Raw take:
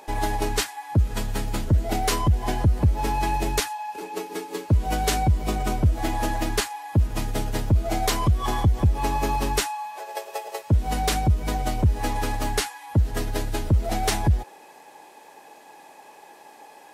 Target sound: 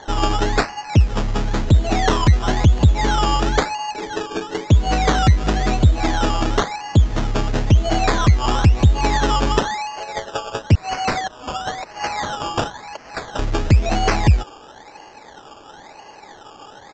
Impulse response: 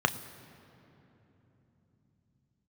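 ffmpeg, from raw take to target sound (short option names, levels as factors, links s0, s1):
-filter_complex "[0:a]asettb=1/sr,asplit=3[s0][s1][s2];[s0]atrim=end=10.754[s3];[s1]atrim=start=10.75:end=13.39,asetpts=PTS-STARTPTS,afade=t=in:d=0.004:c=qsin,afade=t=out:st=2.636:d=0.004:c=qsin,highpass=f=680:w=0.5412,highpass=f=680:w=1.3066[s4];[s2]atrim=start=13.386[s5];[s3][s4]acrossfade=d=0.004:c1=hsin:c2=qsin[s6];[s6][s5]acrossfade=d=0.004:c1=qsin:c2=hsin,acrusher=samples=17:mix=1:aa=0.000001:lfo=1:lforange=10.2:lforate=0.98,aresample=16000,aresample=44100,volume=2.11"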